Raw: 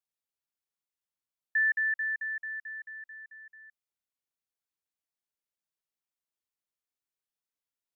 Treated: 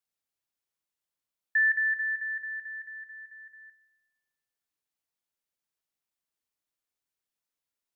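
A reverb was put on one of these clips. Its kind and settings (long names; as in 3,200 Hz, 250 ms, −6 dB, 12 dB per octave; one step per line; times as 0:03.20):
feedback delay network reverb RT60 1.3 s, high-frequency decay 0.8×, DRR 17 dB
level +2.5 dB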